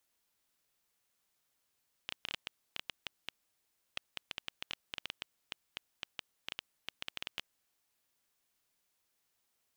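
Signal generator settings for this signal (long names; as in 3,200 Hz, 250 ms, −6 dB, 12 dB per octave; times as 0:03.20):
Geiger counter clicks 7.6 per second −20 dBFS 5.59 s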